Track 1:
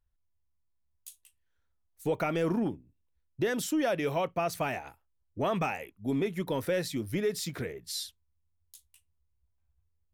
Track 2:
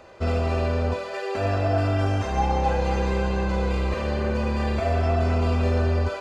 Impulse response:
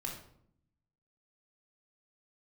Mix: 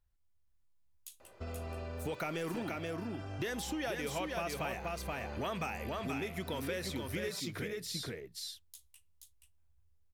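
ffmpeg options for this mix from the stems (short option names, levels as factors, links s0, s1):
-filter_complex "[0:a]volume=1,asplit=3[s0][s1][s2];[s1]volume=0.1[s3];[s2]volume=0.596[s4];[1:a]acompressor=threshold=0.0501:ratio=3,adelay=1200,volume=0.237[s5];[2:a]atrim=start_sample=2205[s6];[s3][s6]afir=irnorm=-1:irlink=0[s7];[s4]aecho=0:1:478:1[s8];[s0][s5][s7][s8]amix=inputs=4:normalize=0,acrossover=split=1300|5400[s9][s10][s11];[s9]acompressor=threshold=0.0126:ratio=4[s12];[s10]acompressor=threshold=0.00891:ratio=4[s13];[s11]acompressor=threshold=0.00398:ratio=4[s14];[s12][s13][s14]amix=inputs=3:normalize=0"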